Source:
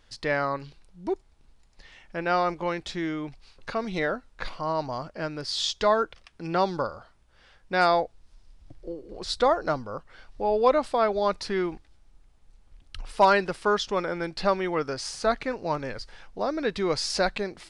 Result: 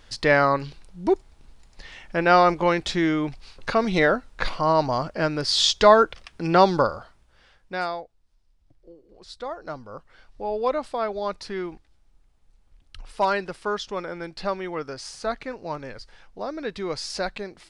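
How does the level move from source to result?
0:06.86 +8 dB
0:07.74 −4 dB
0:08.04 −12 dB
0:09.45 −12 dB
0:09.96 −3.5 dB

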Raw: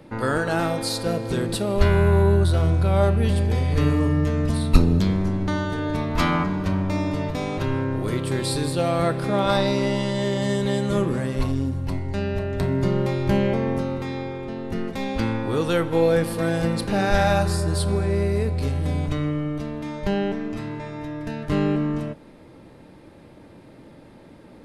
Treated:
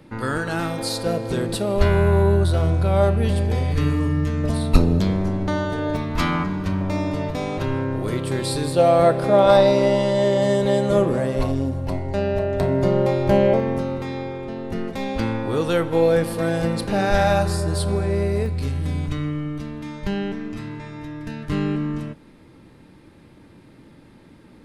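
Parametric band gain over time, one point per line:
parametric band 610 Hz 1 octave
−5.5 dB
from 0:00.79 +3 dB
from 0:03.72 −6.5 dB
from 0:04.44 +5.5 dB
from 0:05.97 −3.5 dB
from 0:06.81 +2.5 dB
from 0:08.76 +10.5 dB
from 0:13.60 +2.5 dB
from 0:18.46 −8 dB

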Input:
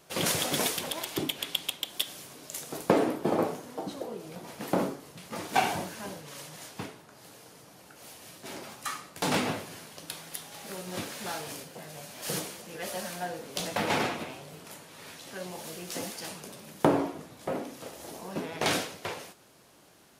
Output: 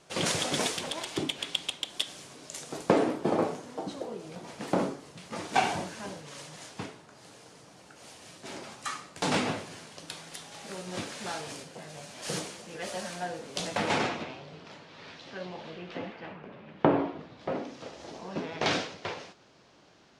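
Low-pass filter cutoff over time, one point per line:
low-pass filter 24 dB per octave
0:13.92 8,900 Hz
0:14.37 4,900 Hz
0:15.30 4,900 Hz
0:16.39 2,300 Hz
0:17.72 5,900 Hz

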